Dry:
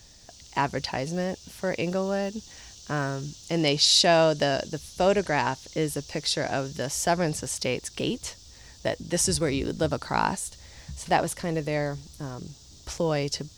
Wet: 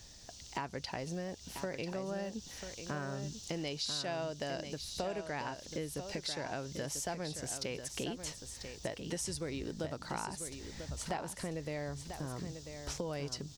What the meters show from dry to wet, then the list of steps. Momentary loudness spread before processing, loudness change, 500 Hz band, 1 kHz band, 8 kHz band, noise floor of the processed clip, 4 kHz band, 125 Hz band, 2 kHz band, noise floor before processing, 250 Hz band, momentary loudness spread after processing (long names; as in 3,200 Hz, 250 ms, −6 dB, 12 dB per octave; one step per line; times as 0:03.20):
16 LU, −13.5 dB, −13.5 dB, −14.5 dB, −11.0 dB, −52 dBFS, −14.0 dB, −11.0 dB, −13.0 dB, −50 dBFS, −11.5 dB, 6 LU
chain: downward compressor 6 to 1, threshold −34 dBFS, peak gain reduction 16.5 dB
single-tap delay 993 ms −8.5 dB
level −2.5 dB